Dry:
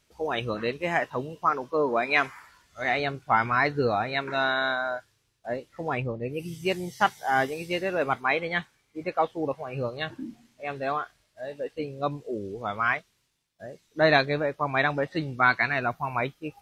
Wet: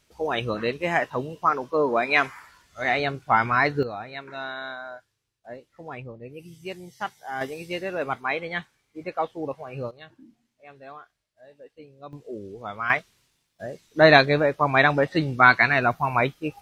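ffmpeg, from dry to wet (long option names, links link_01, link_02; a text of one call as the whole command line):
ffmpeg -i in.wav -af "asetnsamples=nb_out_samples=441:pad=0,asendcmd='3.83 volume volume -8.5dB;7.41 volume volume -2dB;9.91 volume volume -14dB;12.13 volume volume -3.5dB;12.9 volume volume 6dB',volume=2.5dB" out.wav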